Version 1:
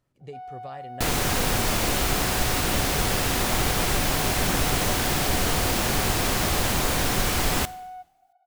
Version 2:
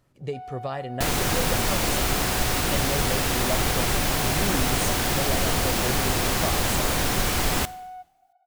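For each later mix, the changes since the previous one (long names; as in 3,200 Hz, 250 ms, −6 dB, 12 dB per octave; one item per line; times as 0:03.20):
speech +9.5 dB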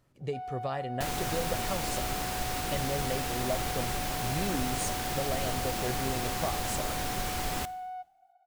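speech −3.0 dB
second sound −10.0 dB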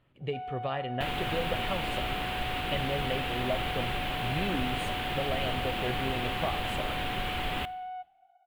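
speech: send +6.0 dB
master: add high shelf with overshoot 4,200 Hz −11.5 dB, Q 3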